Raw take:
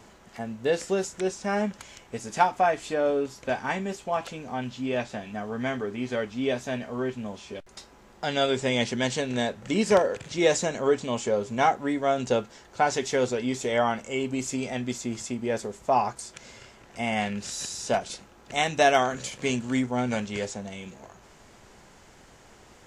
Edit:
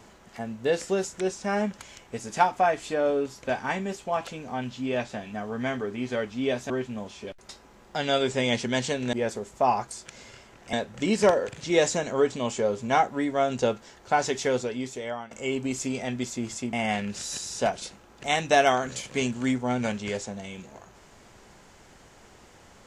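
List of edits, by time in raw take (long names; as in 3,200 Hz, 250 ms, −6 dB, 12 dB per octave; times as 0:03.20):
0:06.70–0:06.98: remove
0:13.10–0:13.99: fade out linear, to −17 dB
0:15.41–0:17.01: move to 0:09.41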